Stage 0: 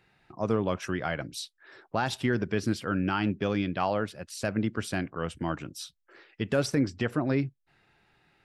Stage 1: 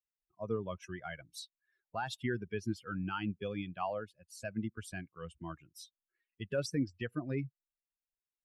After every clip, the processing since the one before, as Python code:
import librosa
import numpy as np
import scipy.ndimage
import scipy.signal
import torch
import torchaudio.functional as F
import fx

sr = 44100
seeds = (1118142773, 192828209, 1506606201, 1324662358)

y = fx.bin_expand(x, sr, power=2.0)
y = F.gain(torch.from_numpy(y), -5.0).numpy()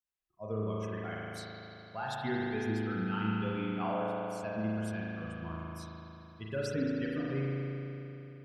y = fx.rev_spring(x, sr, rt60_s=3.4, pass_ms=(37,), chirp_ms=45, drr_db=-5.0)
y = F.gain(torch.from_numpy(y), -3.0).numpy()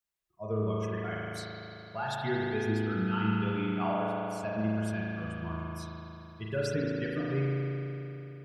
y = fx.notch_comb(x, sr, f0_hz=260.0)
y = F.gain(torch.from_numpy(y), 4.5).numpy()